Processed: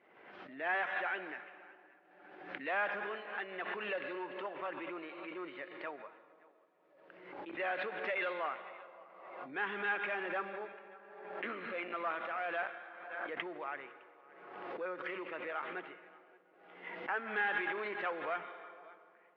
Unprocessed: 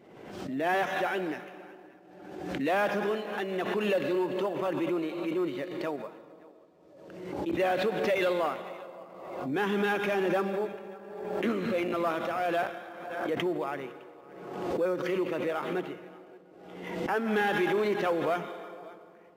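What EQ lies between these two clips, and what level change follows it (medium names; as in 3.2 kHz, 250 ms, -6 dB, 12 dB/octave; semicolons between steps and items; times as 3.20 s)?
band-pass filter 1.9 kHz, Q 1.2; distance through air 310 m; +1.0 dB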